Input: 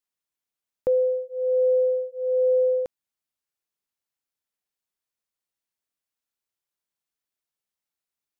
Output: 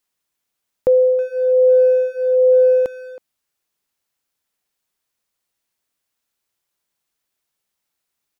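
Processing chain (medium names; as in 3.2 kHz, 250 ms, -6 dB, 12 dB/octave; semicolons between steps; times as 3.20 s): in parallel at -3 dB: peak limiter -26.5 dBFS, peak gain reduction 10.5 dB; on the sum: speakerphone echo 320 ms, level -15 dB; trim +6 dB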